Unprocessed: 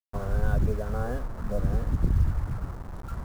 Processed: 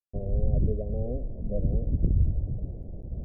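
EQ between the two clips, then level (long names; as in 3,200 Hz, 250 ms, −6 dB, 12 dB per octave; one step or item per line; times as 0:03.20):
Butterworth low-pass 620 Hz 48 dB per octave
0.0 dB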